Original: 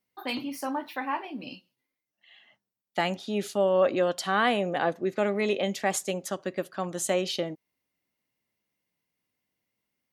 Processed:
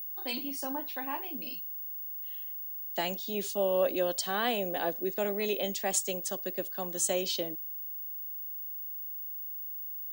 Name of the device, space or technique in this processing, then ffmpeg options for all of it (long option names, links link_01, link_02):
old television with a line whistle: -af "highpass=frequency=180:width=0.5412,highpass=frequency=180:width=1.3066,equalizer=frequency=220:width_type=q:width=4:gain=-3,equalizer=frequency=1300:width_type=q:width=4:gain=-7,equalizer=frequency=2100:width_type=q:width=4:gain=-6,lowpass=frequency=8900:width=0.5412,lowpass=frequency=8900:width=1.3066,aeval=exprs='val(0)+0.00447*sin(2*PI*15625*n/s)':channel_layout=same,aemphasis=mode=production:type=50kf,equalizer=frequency=1000:width=1.5:gain=-2.5,volume=-4dB"